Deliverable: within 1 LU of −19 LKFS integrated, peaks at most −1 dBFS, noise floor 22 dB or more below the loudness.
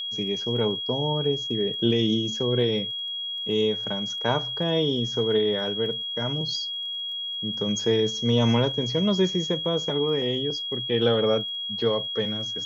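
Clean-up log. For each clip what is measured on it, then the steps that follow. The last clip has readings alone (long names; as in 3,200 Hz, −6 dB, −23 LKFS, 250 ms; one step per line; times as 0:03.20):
crackle rate 23 per second; interfering tone 3,300 Hz; level of the tone −29 dBFS; integrated loudness −25.0 LKFS; sample peak −9.5 dBFS; target loudness −19.0 LKFS
→ click removal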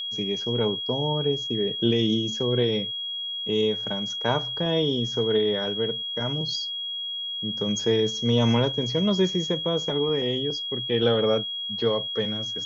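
crackle rate 0 per second; interfering tone 3,300 Hz; level of the tone −29 dBFS
→ notch filter 3,300 Hz, Q 30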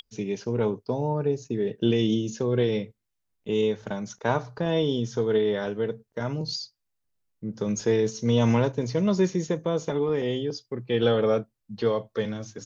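interfering tone none found; integrated loudness −26.5 LKFS; sample peak −10.5 dBFS; target loudness −19.0 LKFS
→ level +7.5 dB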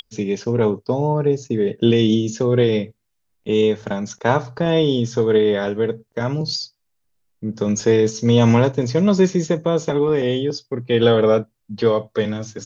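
integrated loudness −19.0 LKFS; sample peak −3.0 dBFS; background noise floor −71 dBFS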